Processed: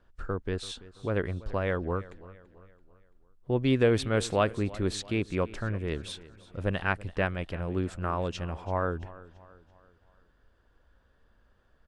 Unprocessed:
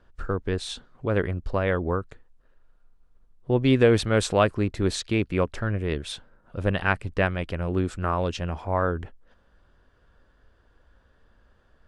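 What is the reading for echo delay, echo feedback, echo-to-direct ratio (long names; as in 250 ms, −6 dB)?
335 ms, 46%, −18.0 dB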